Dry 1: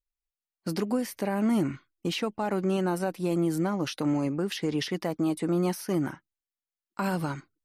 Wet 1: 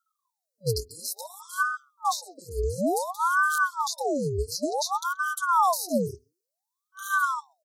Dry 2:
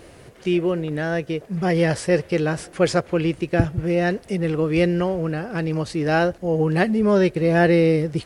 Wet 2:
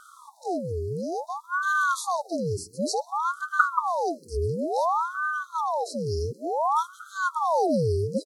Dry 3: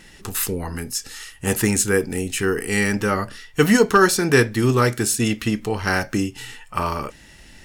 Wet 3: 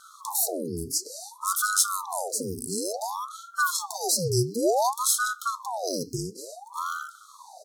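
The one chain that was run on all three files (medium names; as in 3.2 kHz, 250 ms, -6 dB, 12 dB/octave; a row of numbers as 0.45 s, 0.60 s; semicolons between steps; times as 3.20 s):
speakerphone echo 130 ms, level -19 dB; FFT band-reject 190–4400 Hz; ring modulator with a swept carrier 810 Hz, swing 70%, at 0.56 Hz; normalise loudness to -27 LUFS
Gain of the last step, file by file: +11.5 dB, +2.5 dB, +2.0 dB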